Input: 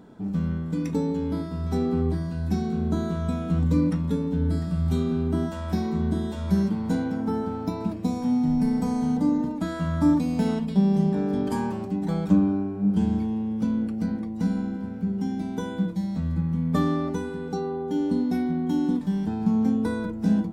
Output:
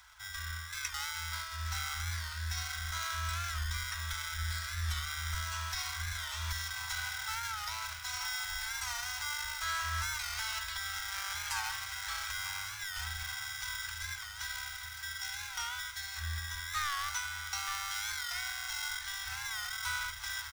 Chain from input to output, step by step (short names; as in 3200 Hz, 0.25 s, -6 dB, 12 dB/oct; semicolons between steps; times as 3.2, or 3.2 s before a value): HPF 92 Hz 12 dB/oct; low shelf 180 Hz +5.5 dB; echo 0.926 s -11.5 dB; in parallel at -9.5 dB: sample-and-hold 25×; on the sum: limiter -15 dBFS, peak gain reduction 10.5 dB; inverse Chebyshev band-stop 160–420 Hz, stop band 70 dB; bell 5800 Hz +6.5 dB 0.32 oct; thin delay 1.153 s, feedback 78%, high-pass 1500 Hz, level -14 dB; record warp 45 rpm, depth 100 cents; gain +5 dB